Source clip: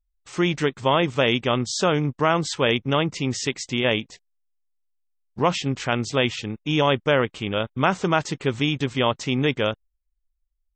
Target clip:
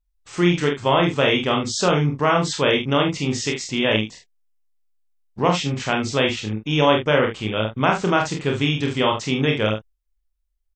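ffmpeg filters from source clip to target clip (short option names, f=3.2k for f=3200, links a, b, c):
-af "aecho=1:1:28|46|74:0.562|0.562|0.335"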